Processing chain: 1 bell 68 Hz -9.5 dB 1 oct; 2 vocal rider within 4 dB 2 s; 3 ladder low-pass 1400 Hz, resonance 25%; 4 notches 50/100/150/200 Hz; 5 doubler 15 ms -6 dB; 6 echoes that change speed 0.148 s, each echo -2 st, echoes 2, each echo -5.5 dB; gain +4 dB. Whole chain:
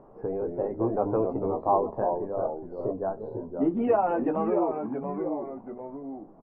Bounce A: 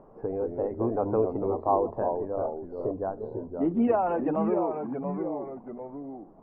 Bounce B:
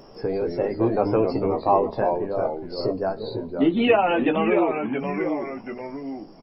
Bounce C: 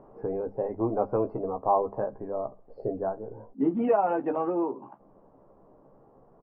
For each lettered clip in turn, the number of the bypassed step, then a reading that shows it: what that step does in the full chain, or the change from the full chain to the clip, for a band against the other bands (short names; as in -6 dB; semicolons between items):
5, 125 Hz band +1.5 dB; 3, 2 kHz band +11.5 dB; 6, momentary loudness spread change -3 LU